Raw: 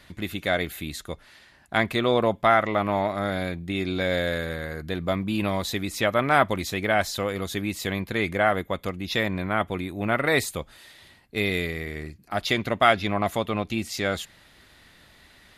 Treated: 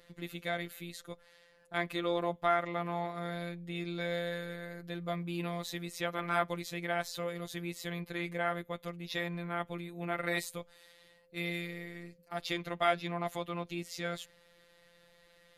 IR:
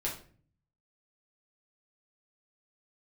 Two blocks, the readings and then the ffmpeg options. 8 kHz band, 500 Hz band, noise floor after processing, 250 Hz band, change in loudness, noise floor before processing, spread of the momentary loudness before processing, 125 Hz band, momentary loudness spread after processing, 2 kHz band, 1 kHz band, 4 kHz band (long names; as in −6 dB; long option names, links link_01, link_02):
−11.0 dB, −11.0 dB, −64 dBFS, −11.0 dB, −11.0 dB, −55 dBFS, 12 LU, −10.5 dB, 12 LU, −11.5 dB, −10.5 dB, −11.0 dB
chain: -af "aeval=exprs='val(0)+0.00708*sin(2*PI*450*n/s)':channel_layout=same,afftfilt=real='hypot(re,im)*cos(PI*b)':imag='0':win_size=1024:overlap=0.75,volume=-7.5dB"